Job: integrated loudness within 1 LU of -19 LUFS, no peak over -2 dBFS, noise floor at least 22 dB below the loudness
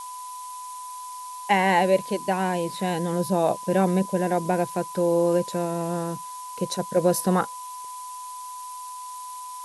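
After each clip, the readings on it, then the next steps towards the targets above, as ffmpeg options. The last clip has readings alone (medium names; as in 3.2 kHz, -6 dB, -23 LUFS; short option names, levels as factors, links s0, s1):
steady tone 1 kHz; tone level -35 dBFS; noise floor -37 dBFS; noise floor target -47 dBFS; loudness -24.5 LUFS; peak level -8.0 dBFS; loudness target -19.0 LUFS
-> -af "bandreject=f=1000:w=30"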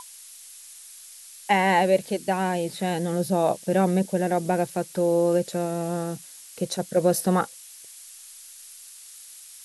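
steady tone not found; noise floor -46 dBFS; noise floor target -47 dBFS
-> -af "afftdn=nr=6:nf=-46"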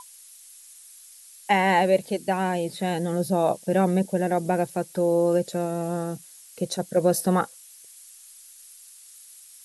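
noise floor -49 dBFS; loudness -24.5 LUFS; peak level -8.0 dBFS; loudness target -19.0 LUFS
-> -af "volume=1.88"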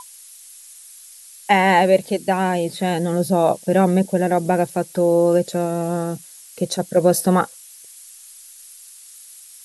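loudness -19.0 LUFS; peak level -2.5 dBFS; noise floor -43 dBFS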